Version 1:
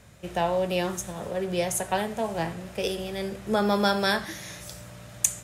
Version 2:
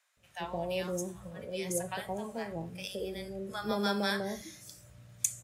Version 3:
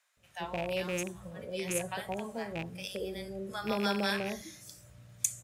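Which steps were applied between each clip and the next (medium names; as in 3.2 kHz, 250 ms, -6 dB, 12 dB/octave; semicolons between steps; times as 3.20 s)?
bands offset in time highs, lows 170 ms, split 800 Hz; spectral noise reduction 9 dB; trim -7 dB
rattle on loud lows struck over -38 dBFS, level -28 dBFS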